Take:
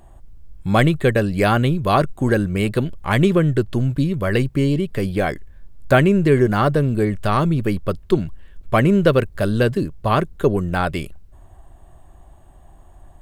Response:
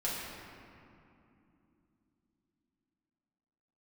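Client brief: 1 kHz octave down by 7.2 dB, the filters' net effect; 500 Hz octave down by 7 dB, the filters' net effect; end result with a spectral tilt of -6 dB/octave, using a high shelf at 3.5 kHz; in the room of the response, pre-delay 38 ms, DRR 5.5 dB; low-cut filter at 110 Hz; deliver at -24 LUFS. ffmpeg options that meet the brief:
-filter_complex "[0:a]highpass=110,equalizer=f=500:t=o:g=-7.5,equalizer=f=1000:t=o:g=-8,highshelf=f=3500:g=4.5,asplit=2[s0][s1];[1:a]atrim=start_sample=2205,adelay=38[s2];[s1][s2]afir=irnorm=-1:irlink=0,volume=0.282[s3];[s0][s3]amix=inputs=2:normalize=0,volume=0.708"

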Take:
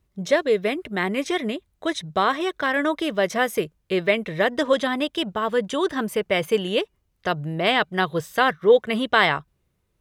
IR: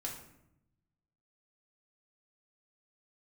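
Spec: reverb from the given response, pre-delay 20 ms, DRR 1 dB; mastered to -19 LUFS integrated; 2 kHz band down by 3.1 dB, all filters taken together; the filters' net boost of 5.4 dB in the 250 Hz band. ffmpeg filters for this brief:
-filter_complex "[0:a]equalizer=f=250:t=o:g=7,equalizer=f=2000:t=o:g=-4,asplit=2[s0][s1];[1:a]atrim=start_sample=2205,adelay=20[s2];[s1][s2]afir=irnorm=-1:irlink=0,volume=0.944[s3];[s0][s3]amix=inputs=2:normalize=0,volume=0.944"

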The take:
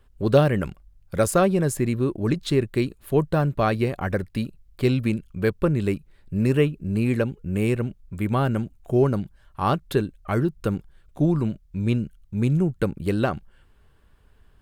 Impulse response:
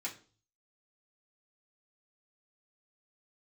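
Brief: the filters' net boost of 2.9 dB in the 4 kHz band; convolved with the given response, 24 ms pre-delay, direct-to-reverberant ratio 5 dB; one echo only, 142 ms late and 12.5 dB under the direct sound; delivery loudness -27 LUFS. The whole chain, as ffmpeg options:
-filter_complex "[0:a]equalizer=f=4000:t=o:g=3.5,aecho=1:1:142:0.237,asplit=2[s0][s1];[1:a]atrim=start_sample=2205,adelay=24[s2];[s1][s2]afir=irnorm=-1:irlink=0,volume=0.501[s3];[s0][s3]amix=inputs=2:normalize=0,volume=0.631"

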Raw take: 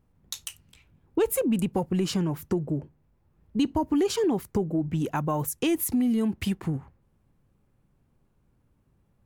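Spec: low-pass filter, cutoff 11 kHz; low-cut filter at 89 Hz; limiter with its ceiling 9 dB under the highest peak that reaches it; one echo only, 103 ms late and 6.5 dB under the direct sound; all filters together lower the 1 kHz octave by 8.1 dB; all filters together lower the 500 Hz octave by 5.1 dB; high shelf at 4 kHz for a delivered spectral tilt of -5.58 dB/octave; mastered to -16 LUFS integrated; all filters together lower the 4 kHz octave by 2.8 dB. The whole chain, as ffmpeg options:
-af "highpass=89,lowpass=11000,equalizer=f=500:t=o:g=-5.5,equalizer=f=1000:t=o:g=-8,highshelf=f=4000:g=6,equalizer=f=4000:t=o:g=-7,alimiter=limit=0.0841:level=0:latency=1,aecho=1:1:103:0.473,volume=5.01"

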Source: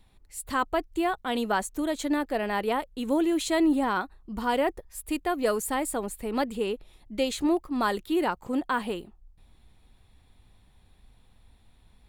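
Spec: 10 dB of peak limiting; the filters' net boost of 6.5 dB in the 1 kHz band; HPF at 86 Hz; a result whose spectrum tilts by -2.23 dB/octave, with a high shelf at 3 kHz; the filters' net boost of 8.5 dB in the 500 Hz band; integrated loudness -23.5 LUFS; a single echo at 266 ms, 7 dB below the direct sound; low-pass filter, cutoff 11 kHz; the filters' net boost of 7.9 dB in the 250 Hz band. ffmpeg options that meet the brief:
-af "highpass=86,lowpass=11000,equalizer=f=250:t=o:g=7,equalizer=f=500:t=o:g=7.5,equalizer=f=1000:t=o:g=5.5,highshelf=f=3000:g=-4.5,alimiter=limit=0.178:level=0:latency=1,aecho=1:1:266:0.447"

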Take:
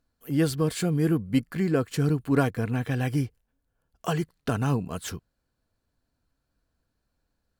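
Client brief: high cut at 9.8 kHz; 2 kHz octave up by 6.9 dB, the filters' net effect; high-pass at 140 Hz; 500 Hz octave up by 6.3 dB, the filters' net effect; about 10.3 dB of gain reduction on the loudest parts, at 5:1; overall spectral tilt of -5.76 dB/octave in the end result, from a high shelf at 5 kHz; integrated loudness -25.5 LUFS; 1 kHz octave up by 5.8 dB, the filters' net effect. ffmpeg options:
-af "highpass=140,lowpass=9800,equalizer=f=500:t=o:g=6.5,equalizer=f=1000:t=o:g=3.5,equalizer=f=2000:t=o:g=8.5,highshelf=f=5000:g=-7,acompressor=threshold=0.0562:ratio=5,volume=1.88"

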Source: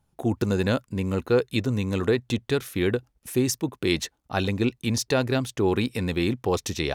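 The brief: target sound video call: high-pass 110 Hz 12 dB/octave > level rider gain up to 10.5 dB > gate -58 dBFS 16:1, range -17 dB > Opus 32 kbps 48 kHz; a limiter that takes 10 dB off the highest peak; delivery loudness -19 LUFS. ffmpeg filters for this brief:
-af "alimiter=limit=0.133:level=0:latency=1,highpass=110,dynaudnorm=m=3.35,agate=range=0.141:threshold=0.00126:ratio=16,volume=3.35" -ar 48000 -c:a libopus -b:a 32k

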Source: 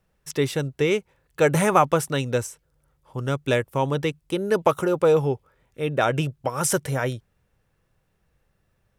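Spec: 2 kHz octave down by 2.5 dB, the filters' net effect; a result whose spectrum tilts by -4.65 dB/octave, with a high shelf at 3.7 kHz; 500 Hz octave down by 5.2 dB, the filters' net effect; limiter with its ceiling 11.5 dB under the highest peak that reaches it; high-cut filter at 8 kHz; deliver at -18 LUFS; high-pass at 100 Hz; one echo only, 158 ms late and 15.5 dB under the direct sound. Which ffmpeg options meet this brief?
-af "highpass=100,lowpass=8000,equalizer=f=500:t=o:g=-6,equalizer=f=2000:t=o:g=-5,highshelf=f=3700:g=7.5,alimiter=limit=0.119:level=0:latency=1,aecho=1:1:158:0.168,volume=3.98"

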